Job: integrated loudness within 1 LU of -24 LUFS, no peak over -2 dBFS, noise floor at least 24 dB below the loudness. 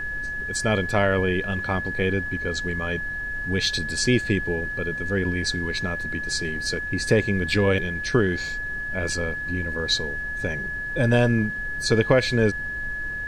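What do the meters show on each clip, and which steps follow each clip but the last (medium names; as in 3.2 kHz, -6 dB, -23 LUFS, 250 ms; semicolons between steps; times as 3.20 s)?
steady tone 1.7 kHz; tone level -28 dBFS; noise floor -30 dBFS; noise floor target -48 dBFS; loudness -24.0 LUFS; peak level -5.0 dBFS; loudness target -24.0 LUFS
-> band-stop 1.7 kHz, Q 30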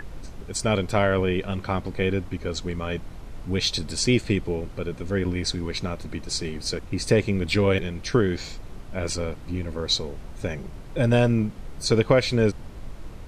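steady tone not found; noise floor -40 dBFS; noise floor target -50 dBFS
-> noise print and reduce 10 dB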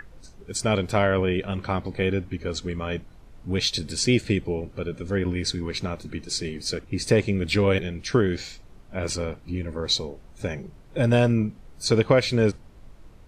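noise floor -48 dBFS; noise floor target -50 dBFS
-> noise print and reduce 6 dB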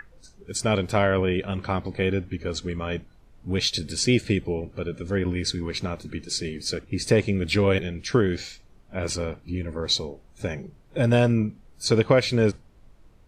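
noise floor -54 dBFS; loudness -25.5 LUFS; peak level -5.0 dBFS; loudness target -24.0 LUFS
-> trim +1.5 dB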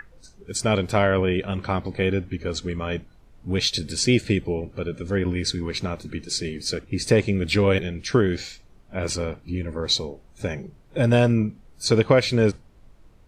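loudness -24.0 LUFS; peak level -3.5 dBFS; noise floor -52 dBFS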